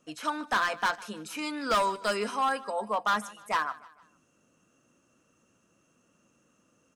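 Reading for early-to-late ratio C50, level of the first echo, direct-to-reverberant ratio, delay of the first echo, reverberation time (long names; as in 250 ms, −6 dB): no reverb audible, −20.0 dB, no reverb audible, 153 ms, no reverb audible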